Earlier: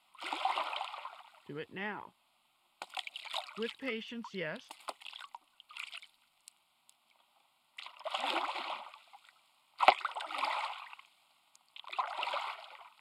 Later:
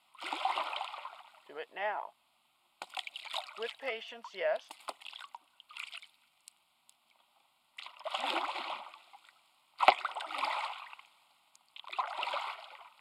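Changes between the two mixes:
speech: add resonant high-pass 670 Hz, resonance Q 7.1; reverb: on, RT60 2.2 s

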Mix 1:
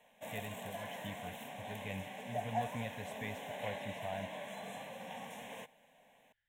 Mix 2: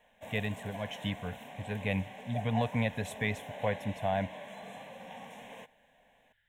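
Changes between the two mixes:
speech +11.5 dB; background: add high shelf 6500 Hz -8 dB

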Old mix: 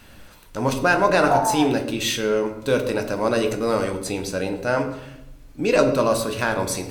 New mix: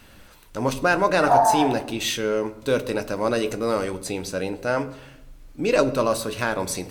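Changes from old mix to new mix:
speech: send -8.0 dB; background: send +9.5 dB

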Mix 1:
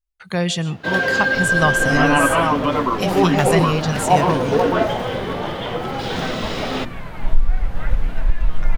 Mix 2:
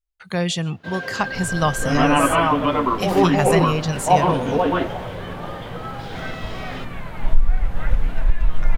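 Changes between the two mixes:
speech: send -11.5 dB; first sound -11.5 dB

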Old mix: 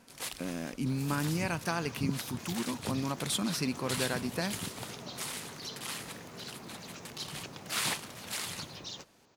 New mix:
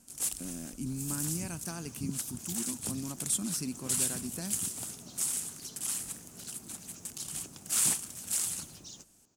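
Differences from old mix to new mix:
first sound +5.0 dB; master: add graphic EQ 125/500/1000/2000/4000/8000 Hz -5/-10/-9/-11/-10/+9 dB

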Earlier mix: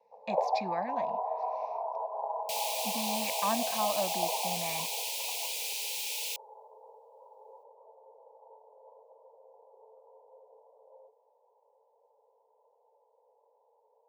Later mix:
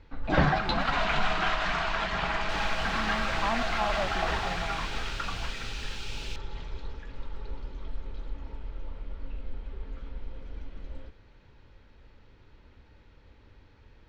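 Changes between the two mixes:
first sound: remove Chebyshev band-pass 440–1000 Hz, order 5; master: add air absorption 150 m

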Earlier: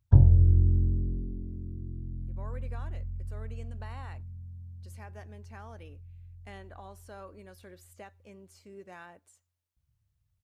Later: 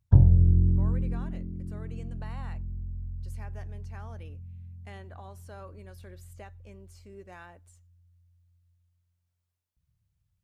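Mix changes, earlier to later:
speech: entry -1.60 s; background: add bell 170 Hz +11.5 dB 0.22 oct

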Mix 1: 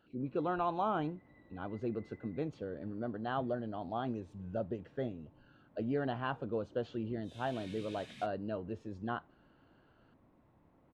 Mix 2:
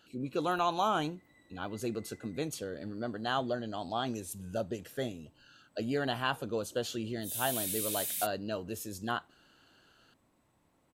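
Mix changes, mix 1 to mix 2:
background -6.5 dB; master: remove tape spacing loss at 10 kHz 44 dB

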